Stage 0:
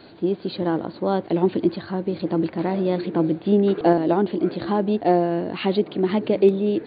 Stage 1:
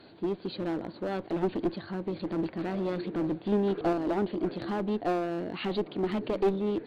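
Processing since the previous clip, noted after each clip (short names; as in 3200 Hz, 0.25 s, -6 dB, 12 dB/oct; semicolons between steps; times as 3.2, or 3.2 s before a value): one-sided clip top -20 dBFS; gain -7 dB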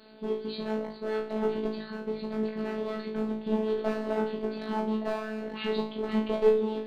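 flutter echo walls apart 3.1 m, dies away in 0.4 s; robotiser 217 Hz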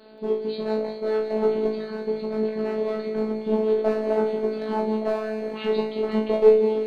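bell 520 Hz +7.5 dB 1.9 oct; thinning echo 0.18 s, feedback 80%, high-pass 1000 Hz, level -8 dB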